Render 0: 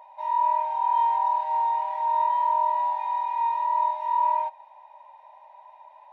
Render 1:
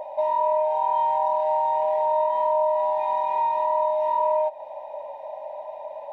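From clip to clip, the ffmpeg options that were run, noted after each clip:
-af "lowshelf=f=800:t=q:w=3:g=11.5,acompressor=threshold=0.0316:ratio=3,volume=2.51"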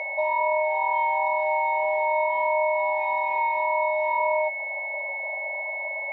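-af "aeval=exprs='val(0)+0.0447*sin(2*PI*2200*n/s)':c=same,volume=0.794"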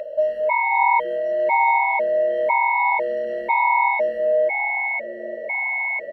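-filter_complex "[0:a]aeval=exprs='val(0)+0.00316*sin(2*PI*490*n/s)':c=same,asplit=4[s0][s1][s2][s3];[s1]adelay=435,afreqshift=-130,volume=0.251[s4];[s2]adelay=870,afreqshift=-260,volume=0.0851[s5];[s3]adelay=1305,afreqshift=-390,volume=0.0292[s6];[s0][s4][s5][s6]amix=inputs=4:normalize=0,afftfilt=real='re*gt(sin(2*PI*1*pts/sr)*(1-2*mod(floor(b*sr/1024/660),2)),0)':imag='im*gt(sin(2*PI*1*pts/sr)*(1-2*mod(floor(b*sr/1024/660),2)),0)':win_size=1024:overlap=0.75,volume=2.37"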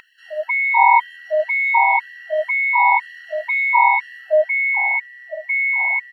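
-af "afftfilt=real='re*gte(b*sr/1024,560*pow(1600/560,0.5+0.5*sin(2*PI*2*pts/sr)))':imag='im*gte(b*sr/1024,560*pow(1600/560,0.5+0.5*sin(2*PI*2*pts/sr)))':win_size=1024:overlap=0.75,volume=1.88"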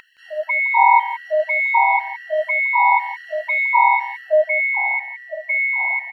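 -af "aecho=1:1:168:0.211"

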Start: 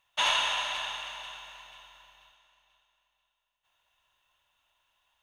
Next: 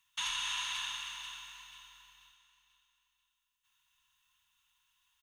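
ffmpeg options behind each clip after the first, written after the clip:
-filter_complex "[0:a]firequalizer=gain_entry='entry(230,0);entry(360,-30);entry(570,-26);entry(1000,-1);entry(6300,9)':delay=0.05:min_phase=1,acrossover=split=110[s0][s1];[s1]alimiter=limit=0.0891:level=0:latency=1:release=375[s2];[s0][s2]amix=inputs=2:normalize=0,volume=0.596"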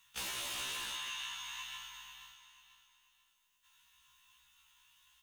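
-af "aeval=exprs='0.0158*(abs(mod(val(0)/0.0158+3,4)-2)-1)':c=same,acompressor=threshold=0.00447:ratio=6,afftfilt=real='re*1.73*eq(mod(b,3),0)':imag='im*1.73*eq(mod(b,3),0)':win_size=2048:overlap=0.75,volume=3.35"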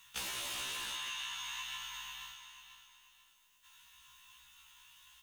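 -af "acompressor=threshold=0.00398:ratio=2.5,volume=2.24"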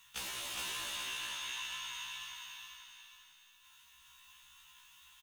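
-af "aecho=1:1:415|830|1245|1660|2075:0.668|0.254|0.0965|0.0367|0.0139,volume=0.841"

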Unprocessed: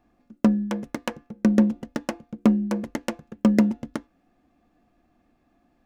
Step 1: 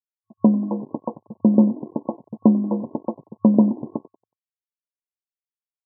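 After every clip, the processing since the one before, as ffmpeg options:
-filter_complex "[0:a]asplit=6[s0][s1][s2][s3][s4][s5];[s1]adelay=92,afreqshift=46,volume=0.106[s6];[s2]adelay=184,afreqshift=92,volume=0.0646[s7];[s3]adelay=276,afreqshift=138,volume=0.0394[s8];[s4]adelay=368,afreqshift=184,volume=0.024[s9];[s5]adelay=460,afreqshift=230,volume=0.0146[s10];[s0][s6][s7][s8][s9][s10]amix=inputs=6:normalize=0,aeval=exprs='sgn(val(0))*max(abs(val(0))-0.00473,0)':c=same,afftfilt=real='re*between(b*sr/4096,100,1100)':imag='im*between(b*sr/4096,100,1100)':win_size=4096:overlap=0.75,volume=1.5"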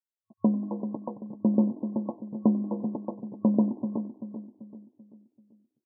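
-filter_complex "[0:a]asplit=2[s0][s1];[s1]adelay=387,lowpass=f=820:p=1,volume=0.335,asplit=2[s2][s3];[s3]adelay=387,lowpass=f=820:p=1,volume=0.46,asplit=2[s4][s5];[s5]adelay=387,lowpass=f=820:p=1,volume=0.46,asplit=2[s6][s7];[s7]adelay=387,lowpass=f=820:p=1,volume=0.46,asplit=2[s8][s9];[s9]adelay=387,lowpass=f=820:p=1,volume=0.46[s10];[s0][s2][s4][s6][s8][s10]amix=inputs=6:normalize=0,volume=0.398"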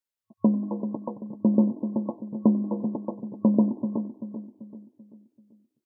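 -af "bandreject=f=750:w=12,volume=1.33"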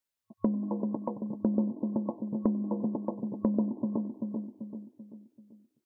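-af "acompressor=threshold=0.0282:ratio=2.5,volume=1.26"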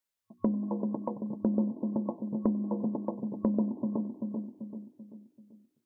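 -af "bandreject=f=60:t=h:w=6,bandreject=f=120:t=h:w=6,bandreject=f=180:t=h:w=6,bandreject=f=240:t=h:w=6,bandreject=f=300:t=h:w=6,bandreject=f=360:t=h:w=6"

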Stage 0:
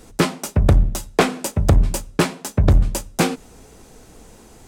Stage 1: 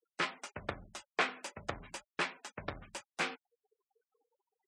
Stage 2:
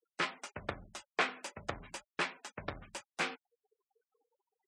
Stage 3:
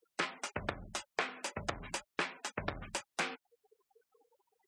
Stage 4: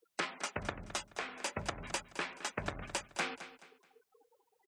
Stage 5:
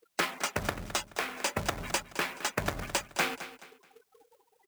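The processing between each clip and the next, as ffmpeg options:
-af "flanger=delay=5.1:depth=6.1:regen=-74:speed=0.44:shape=sinusoidal,bandpass=f=2000:t=q:w=1:csg=0,afftfilt=real='re*gte(hypot(re,im),0.00398)':imag='im*gte(hypot(re,im),0.00398)':win_size=1024:overlap=0.75,volume=0.631"
-af anull
-af "acompressor=threshold=0.00631:ratio=4,volume=2.99"
-af "alimiter=limit=0.0708:level=0:latency=1:release=230,aecho=1:1:214|428|642:0.211|0.0655|0.0203,volume=1.26"
-af "acrusher=bits=2:mode=log:mix=0:aa=0.000001,volume=2.11"

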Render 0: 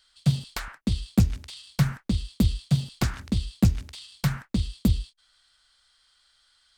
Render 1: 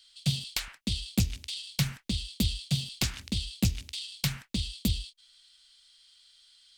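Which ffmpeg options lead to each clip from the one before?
-af "highshelf=f=2000:t=q:w=1.5:g=10.5,volume=0.447"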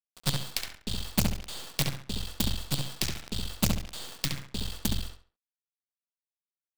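-filter_complex "[0:a]acrusher=bits=4:dc=4:mix=0:aa=0.000001,asplit=2[s0][s1];[s1]adelay=68,lowpass=f=3900:p=1,volume=0.708,asplit=2[s2][s3];[s3]adelay=68,lowpass=f=3900:p=1,volume=0.31,asplit=2[s4][s5];[s5]adelay=68,lowpass=f=3900:p=1,volume=0.31,asplit=2[s6][s7];[s7]adelay=68,lowpass=f=3900:p=1,volume=0.31[s8];[s2][s4][s6][s8]amix=inputs=4:normalize=0[s9];[s0][s9]amix=inputs=2:normalize=0"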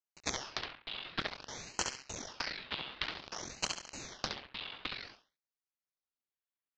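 -af "highpass=f=560:t=q:w=0.5412,highpass=f=560:t=q:w=1.307,lowpass=f=3500:t=q:w=0.5176,lowpass=f=3500:t=q:w=0.7071,lowpass=f=3500:t=q:w=1.932,afreqshift=-81,aeval=exprs='val(0)*sin(2*PI*2000*n/s+2000*0.85/0.53*sin(2*PI*0.53*n/s))':c=same,volume=1.5"

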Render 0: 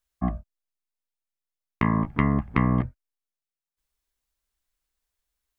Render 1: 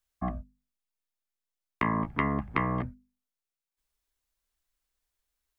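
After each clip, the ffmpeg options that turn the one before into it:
-filter_complex "[0:a]acrossover=split=320|760[s0][s1][s2];[s0]alimiter=limit=0.0668:level=0:latency=1:release=106[s3];[s3][s1][s2]amix=inputs=3:normalize=0,bandreject=f=50:t=h:w=6,bandreject=f=100:t=h:w=6,bandreject=f=150:t=h:w=6,bandreject=f=200:t=h:w=6,bandreject=f=250:t=h:w=6,volume=0.891"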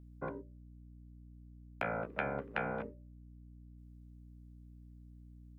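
-af "aeval=exprs='val(0)*sin(2*PI*340*n/s)':c=same,highpass=140,aeval=exprs='val(0)+0.00398*(sin(2*PI*60*n/s)+sin(2*PI*2*60*n/s)/2+sin(2*PI*3*60*n/s)/3+sin(2*PI*4*60*n/s)/4+sin(2*PI*5*60*n/s)/5)':c=same,volume=0.562"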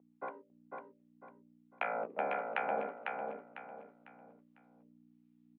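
-filter_complex "[0:a]acrossover=split=910[s0][s1];[s0]aeval=exprs='val(0)*(1-0.7/2+0.7/2*cos(2*PI*1.4*n/s))':c=same[s2];[s1]aeval=exprs='val(0)*(1-0.7/2-0.7/2*cos(2*PI*1.4*n/s))':c=same[s3];[s2][s3]amix=inputs=2:normalize=0,highpass=f=260:w=0.5412,highpass=f=260:w=1.3066,equalizer=f=320:t=q:w=4:g=-8,equalizer=f=780:t=q:w=4:g=6,equalizer=f=1600:t=q:w=4:g=-5,lowpass=f=3100:w=0.5412,lowpass=f=3100:w=1.3066,asplit=2[s4][s5];[s5]aecho=0:1:500|1000|1500|2000:0.631|0.208|0.0687|0.0227[s6];[s4][s6]amix=inputs=2:normalize=0,volume=1.58"

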